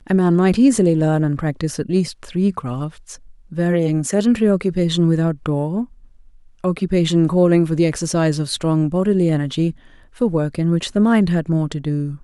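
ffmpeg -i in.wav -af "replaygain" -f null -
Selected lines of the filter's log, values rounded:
track_gain = -1.3 dB
track_peak = 0.463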